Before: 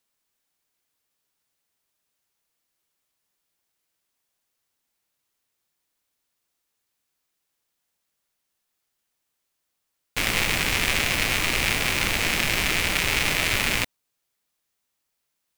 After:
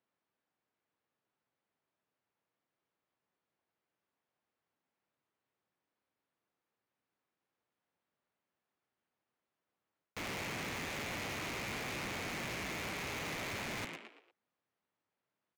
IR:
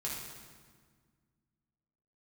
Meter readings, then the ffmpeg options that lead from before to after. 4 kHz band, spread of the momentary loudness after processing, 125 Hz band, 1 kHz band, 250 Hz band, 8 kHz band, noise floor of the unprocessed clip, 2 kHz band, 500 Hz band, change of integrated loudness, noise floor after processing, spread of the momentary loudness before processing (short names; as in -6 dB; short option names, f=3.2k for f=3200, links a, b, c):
-19.5 dB, 5 LU, -14.5 dB, -12.5 dB, -11.5 dB, -19.0 dB, -79 dBFS, -17.5 dB, -11.5 dB, -17.5 dB, under -85 dBFS, 3 LU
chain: -filter_complex "[0:a]highpass=110,asplit=2[a][b];[b]asplit=4[c][d][e][f];[c]adelay=116,afreqshift=61,volume=-18dB[g];[d]adelay=232,afreqshift=122,volume=-25.1dB[h];[e]adelay=348,afreqshift=183,volume=-32.3dB[i];[f]adelay=464,afreqshift=244,volume=-39.4dB[j];[g][h][i][j]amix=inputs=4:normalize=0[k];[a][k]amix=inputs=2:normalize=0,adynamicsmooth=sensitivity=5:basefreq=1.9k,asoftclip=type=tanh:threshold=-20.5dB,areverse,acompressor=threshold=-34dB:ratio=6,areverse,asoftclip=type=hard:threshold=-37.5dB"